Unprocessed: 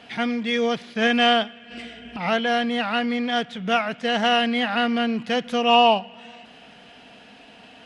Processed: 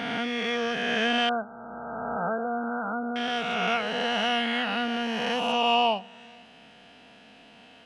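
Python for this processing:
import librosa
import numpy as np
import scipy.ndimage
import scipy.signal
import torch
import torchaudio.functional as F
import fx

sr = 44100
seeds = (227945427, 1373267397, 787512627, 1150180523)

y = fx.spec_swells(x, sr, rise_s=2.53)
y = fx.brickwall_lowpass(y, sr, high_hz=1600.0, at=(1.29, 3.16))
y = y * 10.0 ** (-8.5 / 20.0)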